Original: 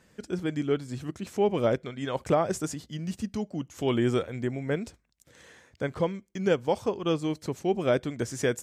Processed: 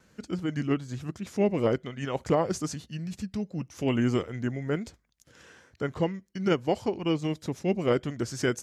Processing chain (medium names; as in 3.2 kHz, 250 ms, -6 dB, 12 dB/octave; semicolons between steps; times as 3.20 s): vibrato 1.1 Hz 18 cents; formant shift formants -2 st